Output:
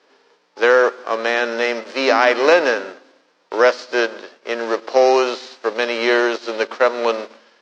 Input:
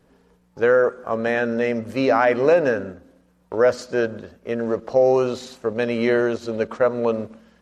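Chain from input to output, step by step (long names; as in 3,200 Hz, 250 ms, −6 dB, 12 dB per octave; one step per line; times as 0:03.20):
spectral envelope flattened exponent 0.6
elliptic band-pass filter 330–5,200 Hz, stop band 60 dB
level +4 dB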